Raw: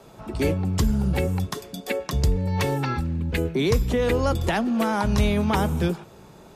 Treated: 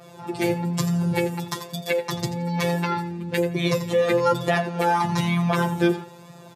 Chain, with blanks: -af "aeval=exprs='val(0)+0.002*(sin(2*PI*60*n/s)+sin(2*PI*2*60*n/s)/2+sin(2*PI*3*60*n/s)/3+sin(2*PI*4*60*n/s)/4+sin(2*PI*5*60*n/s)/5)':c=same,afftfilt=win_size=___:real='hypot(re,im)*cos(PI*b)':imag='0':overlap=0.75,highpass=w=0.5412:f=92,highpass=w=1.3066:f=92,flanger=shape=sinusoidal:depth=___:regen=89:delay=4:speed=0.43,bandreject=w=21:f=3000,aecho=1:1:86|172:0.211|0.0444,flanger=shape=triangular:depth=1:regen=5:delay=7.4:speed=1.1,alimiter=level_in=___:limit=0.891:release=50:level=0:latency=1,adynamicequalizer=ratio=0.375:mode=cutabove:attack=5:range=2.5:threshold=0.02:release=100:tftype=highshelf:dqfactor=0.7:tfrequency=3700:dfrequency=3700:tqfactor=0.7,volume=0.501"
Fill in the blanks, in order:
1024, 1.2, 10.6